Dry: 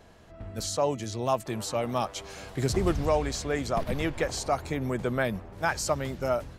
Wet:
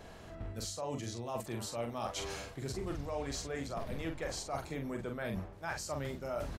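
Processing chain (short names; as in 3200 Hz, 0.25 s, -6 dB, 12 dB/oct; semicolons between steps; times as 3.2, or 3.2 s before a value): reverse; compressor 6:1, threshold -40 dBFS, peak gain reduction 18.5 dB; reverse; doubler 43 ms -5 dB; gain +2.5 dB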